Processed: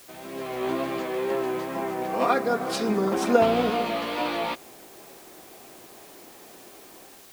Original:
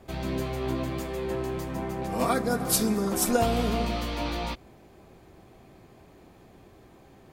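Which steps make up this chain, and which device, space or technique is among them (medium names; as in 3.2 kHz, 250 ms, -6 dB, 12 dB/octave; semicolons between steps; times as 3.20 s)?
dictaphone (band-pass 330–3300 Hz; level rider gain up to 12 dB; wow and flutter; white noise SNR 22 dB); 2.88–3.70 s: bass shelf 230 Hz +8.5 dB; trim -5.5 dB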